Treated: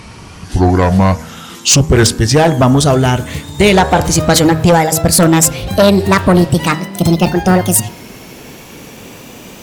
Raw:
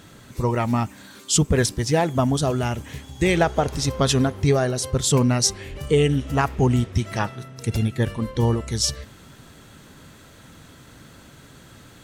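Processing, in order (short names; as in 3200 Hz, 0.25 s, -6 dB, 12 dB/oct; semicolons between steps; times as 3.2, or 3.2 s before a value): speed glide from 68% -> 182%; de-hum 79.04 Hz, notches 23; added harmonics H 5 -8 dB, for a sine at -5 dBFS; gain +4 dB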